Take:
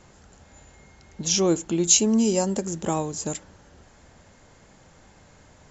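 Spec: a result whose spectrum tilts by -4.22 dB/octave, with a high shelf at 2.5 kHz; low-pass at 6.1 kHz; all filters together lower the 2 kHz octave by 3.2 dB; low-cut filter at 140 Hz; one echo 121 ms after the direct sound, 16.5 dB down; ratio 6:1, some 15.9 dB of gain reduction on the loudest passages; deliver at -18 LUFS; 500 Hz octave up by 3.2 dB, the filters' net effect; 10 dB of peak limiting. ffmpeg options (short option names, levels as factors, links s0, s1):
-af "highpass=140,lowpass=6100,equalizer=f=500:t=o:g=4.5,equalizer=f=2000:t=o:g=-7,highshelf=f=2500:g=3.5,acompressor=threshold=0.0251:ratio=6,alimiter=level_in=1.88:limit=0.0631:level=0:latency=1,volume=0.531,aecho=1:1:121:0.15,volume=11.2"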